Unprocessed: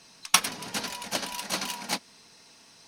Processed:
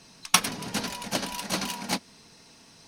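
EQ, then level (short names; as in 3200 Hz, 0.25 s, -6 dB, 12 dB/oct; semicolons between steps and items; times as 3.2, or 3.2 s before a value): low shelf 360 Hz +9 dB; 0.0 dB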